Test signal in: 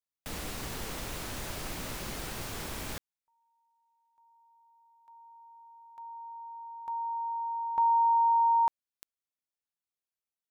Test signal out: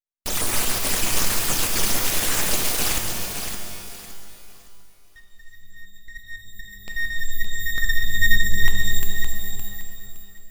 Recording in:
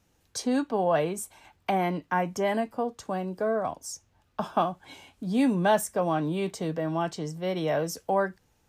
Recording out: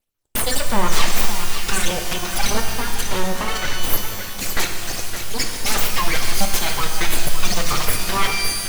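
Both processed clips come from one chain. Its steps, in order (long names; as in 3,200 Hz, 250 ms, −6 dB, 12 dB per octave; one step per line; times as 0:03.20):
time-frequency cells dropped at random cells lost 53%
meter weighting curve D
noise gate −59 dBFS, range −28 dB
high-shelf EQ 2,200 Hz +11.5 dB
notch filter 4,000 Hz, Q 20
sine wavefolder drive 15 dB, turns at −4.5 dBFS
all-pass phaser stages 12, 1.6 Hz, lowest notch 140–4,600 Hz
on a send: feedback echo with a high-pass in the loop 565 ms, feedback 28%, level −7.5 dB
on the sum: full-wave rectification
reverb with rising layers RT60 1.8 s, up +12 semitones, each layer −2 dB, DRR 5.5 dB
level −6 dB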